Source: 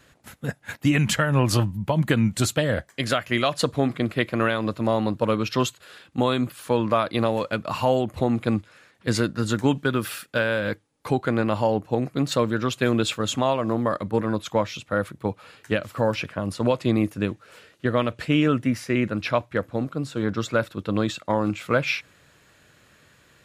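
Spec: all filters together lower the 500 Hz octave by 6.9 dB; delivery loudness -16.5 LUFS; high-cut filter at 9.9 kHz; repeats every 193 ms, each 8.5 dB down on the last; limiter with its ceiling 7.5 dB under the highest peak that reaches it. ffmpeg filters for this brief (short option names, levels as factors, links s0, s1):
-af "lowpass=9900,equalizer=f=500:t=o:g=-8.5,alimiter=limit=0.133:level=0:latency=1,aecho=1:1:193|386|579|772:0.376|0.143|0.0543|0.0206,volume=4.22"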